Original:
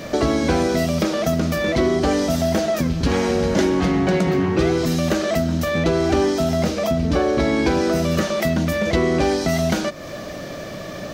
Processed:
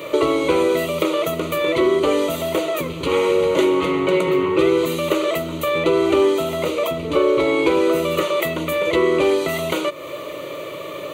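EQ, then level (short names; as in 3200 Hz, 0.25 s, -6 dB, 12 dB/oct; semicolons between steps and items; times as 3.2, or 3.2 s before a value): HPF 210 Hz 12 dB/oct; fixed phaser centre 1100 Hz, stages 8; +5.5 dB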